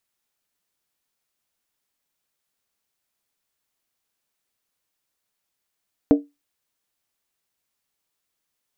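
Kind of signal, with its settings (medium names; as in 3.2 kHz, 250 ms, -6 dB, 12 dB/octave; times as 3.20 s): skin hit, lowest mode 288 Hz, decay 0.21 s, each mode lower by 7 dB, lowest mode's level -7 dB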